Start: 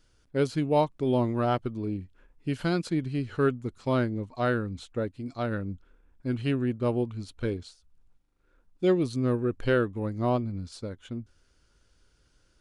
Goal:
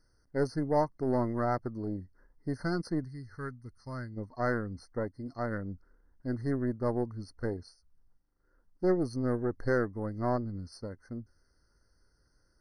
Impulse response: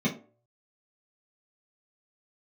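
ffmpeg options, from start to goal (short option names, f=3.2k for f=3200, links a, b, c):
-filter_complex "[0:a]asplit=3[a][b][c];[a]afade=t=out:st=3.04:d=0.02[d];[b]equalizer=f=440:w=0.38:g=-14,afade=t=in:st=3.04:d=0.02,afade=t=out:st=4.16:d=0.02[e];[c]afade=t=in:st=4.16:d=0.02[f];[d][e][f]amix=inputs=3:normalize=0,aeval=exprs='0.251*(cos(1*acos(clip(val(0)/0.251,-1,1)))-cos(1*PI/2))+0.0178*(cos(6*acos(clip(val(0)/0.251,-1,1)))-cos(6*PI/2))':c=same,afftfilt=real='re*eq(mod(floor(b*sr/1024/2100),2),0)':imag='im*eq(mod(floor(b*sr/1024/2100),2),0)':win_size=1024:overlap=0.75,volume=-4dB"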